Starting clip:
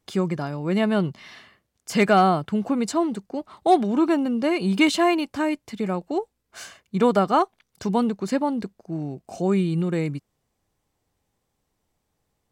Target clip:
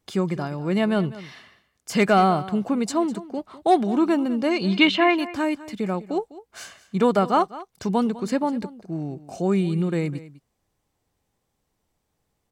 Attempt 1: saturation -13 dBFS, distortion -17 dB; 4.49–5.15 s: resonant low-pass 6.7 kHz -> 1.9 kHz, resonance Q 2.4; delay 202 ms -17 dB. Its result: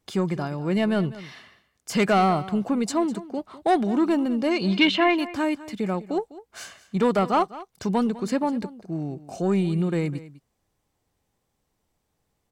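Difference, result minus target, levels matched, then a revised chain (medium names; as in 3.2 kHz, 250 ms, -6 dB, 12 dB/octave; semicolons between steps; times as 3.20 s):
saturation: distortion +16 dB
saturation -3 dBFS, distortion -33 dB; 4.49–5.15 s: resonant low-pass 6.7 kHz -> 1.9 kHz, resonance Q 2.4; delay 202 ms -17 dB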